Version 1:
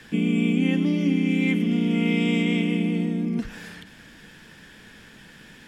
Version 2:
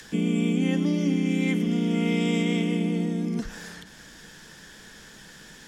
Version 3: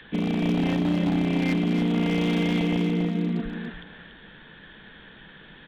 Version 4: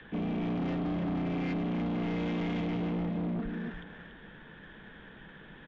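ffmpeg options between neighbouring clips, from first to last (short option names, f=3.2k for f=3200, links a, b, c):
-filter_complex "[0:a]equalizer=f=100:t=o:w=0.67:g=-7,equalizer=f=250:t=o:w=0.67:g=-5,equalizer=f=2.5k:t=o:w=0.67:g=-8,equalizer=f=6.3k:t=o:w=0.67:g=6,acrossover=split=190|530|2100[a][b][c][d];[d]acompressor=mode=upward:threshold=-47dB:ratio=2.5[e];[a][b][c][e]amix=inputs=4:normalize=0,volume=1.5dB"
-af "aresample=8000,acrusher=bits=5:mode=log:mix=0:aa=0.000001,aresample=44100,aeval=exprs='0.112*(abs(mod(val(0)/0.112+3,4)-2)-1)':c=same,aecho=1:1:286:0.473"
-af "asoftclip=type=tanh:threshold=-28.5dB,adynamicsmooth=sensitivity=1.5:basefreq=2.6k,aresample=16000,aresample=44100,volume=-1dB"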